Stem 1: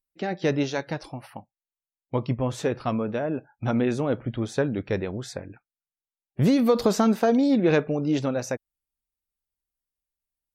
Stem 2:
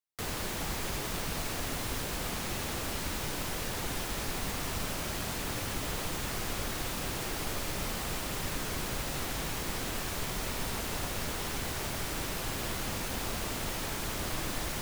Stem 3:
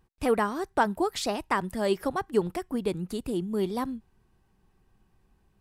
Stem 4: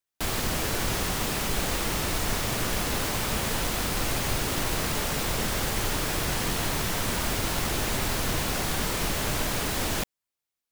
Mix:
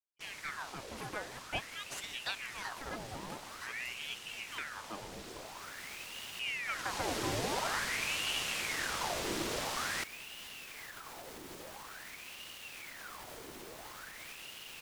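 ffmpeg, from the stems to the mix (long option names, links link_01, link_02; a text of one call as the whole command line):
ffmpeg -i stem1.wav -i stem2.wav -i stem3.wav -i stem4.wav -filter_complex "[0:a]agate=range=-33dB:threshold=-48dB:ratio=3:detection=peak,volume=-16.5dB,asplit=2[link_01][link_02];[1:a]alimiter=level_in=6dB:limit=-24dB:level=0:latency=1:release=159,volume=-6dB,adelay=2450,volume=-5.5dB[link_03];[2:a]highpass=890,adelay=750,volume=-8dB[link_04];[3:a]lowpass=5200,aemphasis=mode=production:type=50fm,volume=-6dB,afade=type=in:start_time=6.62:duration=0.53:silence=0.251189[link_05];[link_02]apad=whole_len=761558[link_06];[link_03][link_06]sidechaincompress=threshold=-53dB:ratio=8:attack=16:release=662[link_07];[link_01][link_07][link_04][link_05]amix=inputs=4:normalize=0,aeval=exprs='val(0)*sin(2*PI*1600*n/s+1600*0.8/0.48*sin(2*PI*0.48*n/s))':channel_layout=same" out.wav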